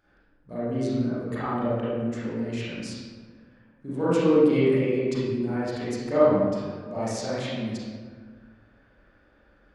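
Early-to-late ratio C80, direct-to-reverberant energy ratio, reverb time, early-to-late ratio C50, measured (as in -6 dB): -1.0 dB, -11.5 dB, 1.6 s, -5.0 dB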